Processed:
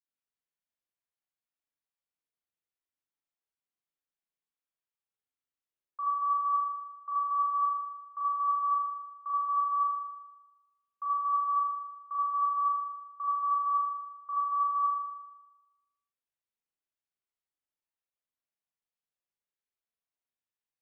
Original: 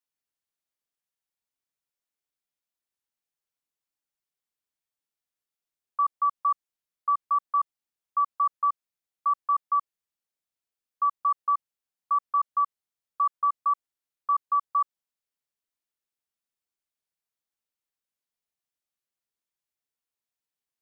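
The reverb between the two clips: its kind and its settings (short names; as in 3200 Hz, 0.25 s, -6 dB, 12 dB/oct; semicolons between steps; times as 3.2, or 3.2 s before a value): spring tank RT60 1.1 s, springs 38 ms, chirp 60 ms, DRR -7 dB; gain -12.5 dB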